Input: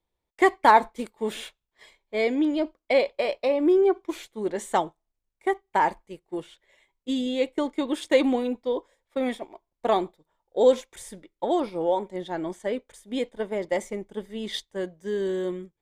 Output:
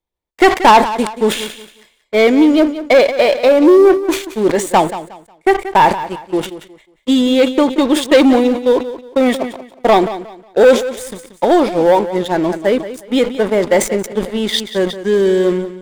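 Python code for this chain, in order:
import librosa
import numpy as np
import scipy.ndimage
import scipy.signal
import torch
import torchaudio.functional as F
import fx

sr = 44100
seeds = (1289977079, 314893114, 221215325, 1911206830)

p1 = fx.leveller(x, sr, passes=3)
p2 = p1 + fx.echo_feedback(p1, sr, ms=181, feedback_pct=27, wet_db=-13.5, dry=0)
p3 = fx.sustainer(p2, sr, db_per_s=140.0)
y = p3 * 10.0 ** (3.5 / 20.0)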